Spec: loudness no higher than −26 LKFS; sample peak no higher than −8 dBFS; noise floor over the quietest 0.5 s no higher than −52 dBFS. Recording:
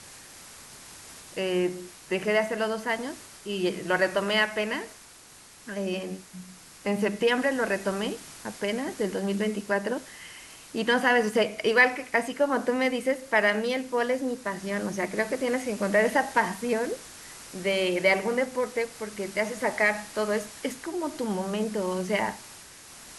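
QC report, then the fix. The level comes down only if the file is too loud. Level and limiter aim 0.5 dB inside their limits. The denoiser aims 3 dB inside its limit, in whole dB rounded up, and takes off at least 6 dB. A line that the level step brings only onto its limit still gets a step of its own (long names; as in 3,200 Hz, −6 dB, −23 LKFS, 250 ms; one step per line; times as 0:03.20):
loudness −27.0 LKFS: in spec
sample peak −8.5 dBFS: in spec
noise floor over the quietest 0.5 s −51 dBFS: out of spec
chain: broadband denoise 6 dB, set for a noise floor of −51 dBFS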